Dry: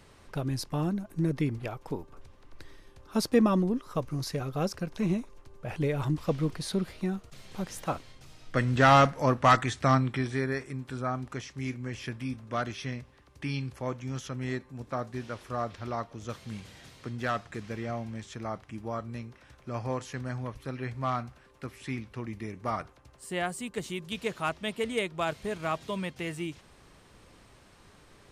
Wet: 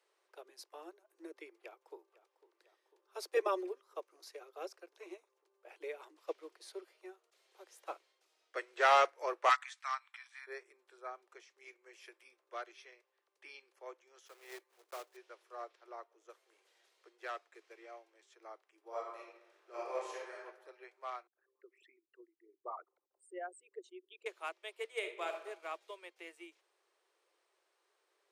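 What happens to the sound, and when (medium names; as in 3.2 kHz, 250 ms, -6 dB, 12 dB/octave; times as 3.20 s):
1.52–2.00 s: echo throw 500 ms, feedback 75%, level -12.5 dB
3.36–3.80 s: comb 5 ms, depth 98%
6.69–7.15 s: band-stop 3.8 kHz
9.49–10.47 s: steep high-pass 930 Hz
11.86–12.29 s: treble shelf 9.6 kHz +12 dB
14.26–15.18 s: block-companded coder 3-bit
15.84–16.67 s: peaking EQ 4 kHz -6 dB 1.3 oct
18.87–20.44 s: reverb throw, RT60 1.3 s, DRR -6 dB
21.27–24.26 s: resonances exaggerated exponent 3
24.89–25.33 s: reverb throw, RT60 1.1 s, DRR 3 dB
whole clip: steep high-pass 340 Hz 96 dB/octave; dynamic bell 2.3 kHz, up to +5 dB, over -54 dBFS, Q 5.1; upward expansion 1.5:1, over -45 dBFS; trim -6 dB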